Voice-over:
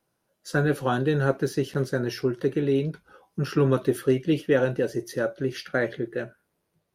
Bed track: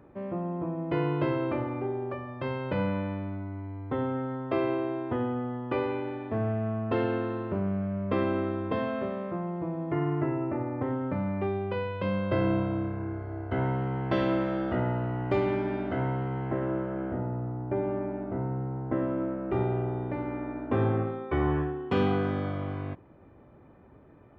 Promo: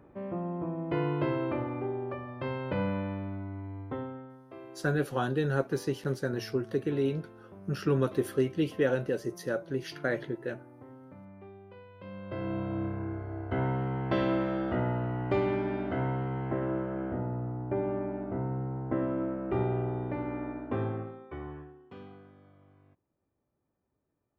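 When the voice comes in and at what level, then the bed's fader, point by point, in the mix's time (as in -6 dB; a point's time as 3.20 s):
4.30 s, -5.5 dB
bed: 3.81 s -2 dB
4.45 s -19.5 dB
11.86 s -19.5 dB
12.85 s -1.5 dB
20.47 s -1.5 dB
22.33 s -27 dB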